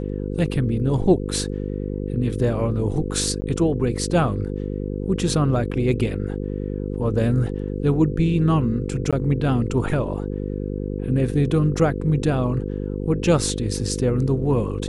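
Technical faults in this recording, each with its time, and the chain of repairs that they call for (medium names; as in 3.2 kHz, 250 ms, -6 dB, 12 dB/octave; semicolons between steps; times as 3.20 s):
buzz 50 Hz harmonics 10 -27 dBFS
3.41–3.42 s: dropout 10 ms
9.11–9.13 s: dropout 16 ms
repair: de-hum 50 Hz, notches 10; interpolate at 3.41 s, 10 ms; interpolate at 9.11 s, 16 ms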